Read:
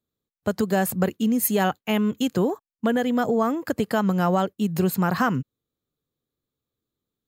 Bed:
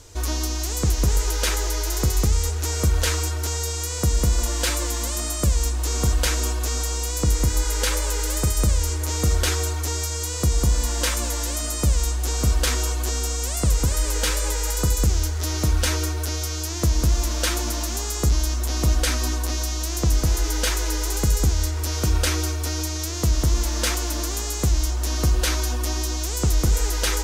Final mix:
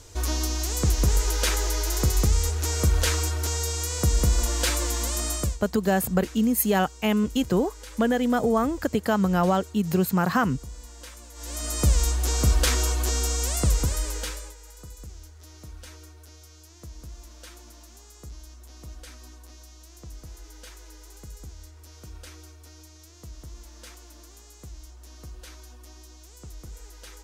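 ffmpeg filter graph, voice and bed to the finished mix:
-filter_complex "[0:a]adelay=5150,volume=-0.5dB[a];[1:a]volume=18.5dB,afade=t=out:st=5.35:d=0.23:silence=0.112202,afade=t=in:st=11.34:d=0.51:silence=0.1,afade=t=out:st=13.51:d=1.04:silence=0.0794328[b];[a][b]amix=inputs=2:normalize=0"

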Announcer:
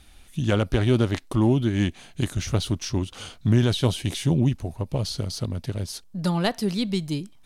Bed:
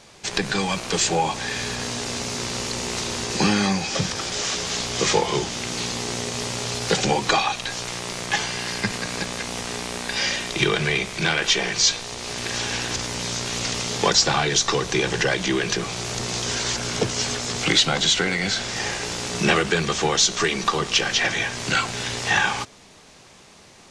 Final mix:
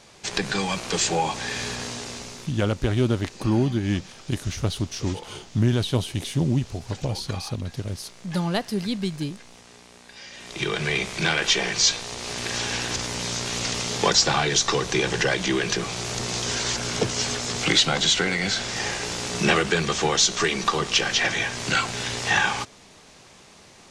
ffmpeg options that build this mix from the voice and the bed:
-filter_complex "[0:a]adelay=2100,volume=-1.5dB[a];[1:a]volume=16dB,afade=t=out:st=1.66:d=0.89:silence=0.141254,afade=t=in:st=10.31:d=0.73:silence=0.125893[b];[a][b]amix=inputs=2:normalize=0"

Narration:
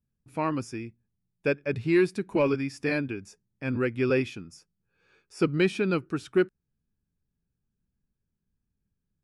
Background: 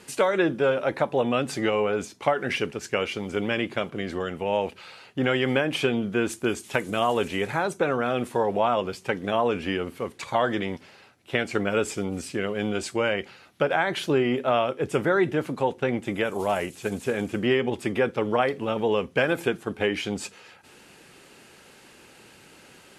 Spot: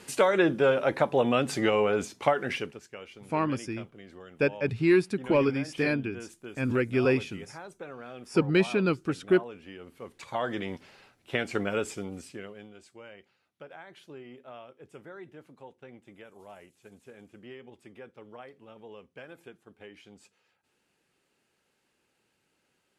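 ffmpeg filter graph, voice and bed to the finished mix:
-filter_complex "[0:a]adelay=2950,volume=0.5dB[a];[1:a]volume=13.5dB,afade=t=out:st=2.24:d=0.63:silence=0.133352,afade=t=in:st=9.76:d=1.11:silence=0.199526,afade=t=out:st=11.6:d=1.09:silence=0.105925[b];[a][b]amix=inputs=2:normalize=0"

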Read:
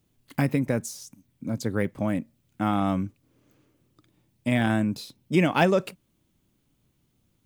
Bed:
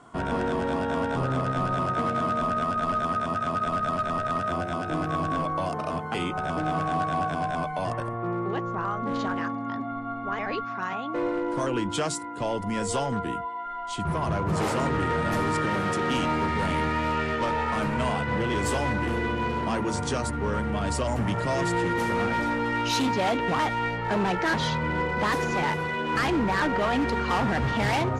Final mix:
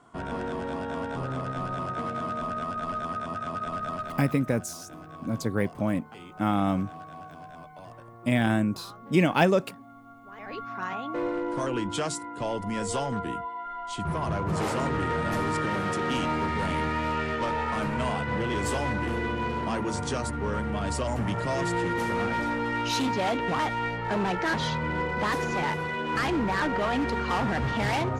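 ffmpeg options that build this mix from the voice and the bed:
-filter_complex "[0:a]adelay=3800,volume=-0.5dB[a];[1:a]volume=9dB,afade=t=out:st=3.94:d=0.46:silence=0.281838,afade=t=in:st=10.32:d=0.51:silence=0.188365[b];[a][b]amix=inputs=2:normalize=0"

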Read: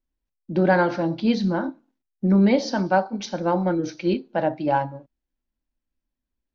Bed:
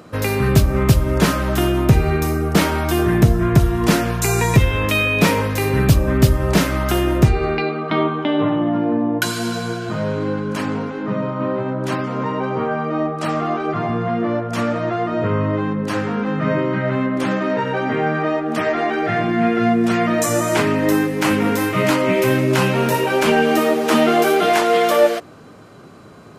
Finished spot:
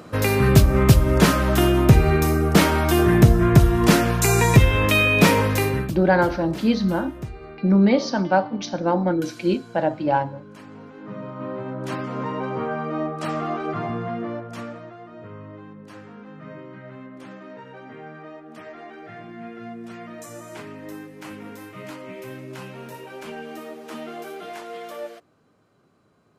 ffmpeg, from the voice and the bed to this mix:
-filter_complex "[0:a]adelay=5400,volume=1dB[a];[1:a]volume=14.5dB,afade=t=out:st=5.56:d=0.36:silence=0.1,afade=t=in:st=10.7:d=1.47:silence=0.188365,afade=t=out:st=13.78:d=1.15:silence=0.177828[b];[a][b]amix=inputs=2:normalize=0"

